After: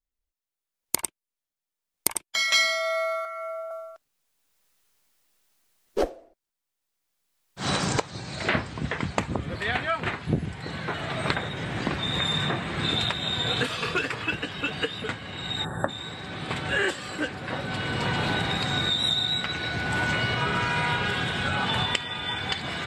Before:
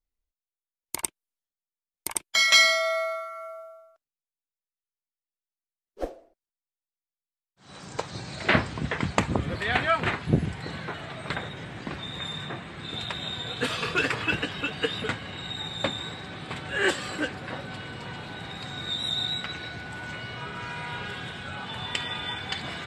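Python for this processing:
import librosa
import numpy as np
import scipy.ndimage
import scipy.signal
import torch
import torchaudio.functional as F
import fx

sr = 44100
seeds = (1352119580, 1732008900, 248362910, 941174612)

y = fx.recorder_agc(x, sr, target_db=-12.0, rise_db_per_s=15.0, max_gain_db=30)
y = fx.cheby_ripple_highpass(y, sr, hz=500.0, ripple_db=6, at=(3.25, 3.71))
y = fx.spec_box(y, sr, start_s=15.65, length_s=0.24, low_hz=1900.0, high_hz=7500.0, gain_db=-28)
y = y * 10.0 ** (-4.0 / 20.0)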